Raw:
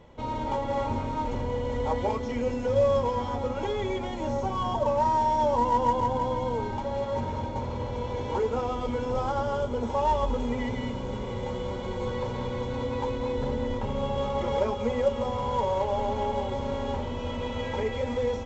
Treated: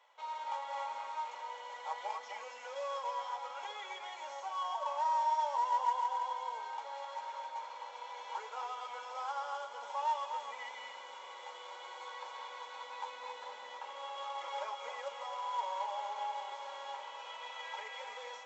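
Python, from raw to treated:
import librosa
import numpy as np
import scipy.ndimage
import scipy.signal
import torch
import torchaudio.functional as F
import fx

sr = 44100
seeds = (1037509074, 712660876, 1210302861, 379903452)

p1 = scipy.signal.sosfilt(scipy.signal.butter(4, 810.0, 'highpass', fs=sr, output='sos'), x)
p2 = p1 + fx.echo_single(p1, sr, ms=261, db=-8.0, dry=0)
y = F.gain(torch.from_numpy(p2), -6.0).numpy()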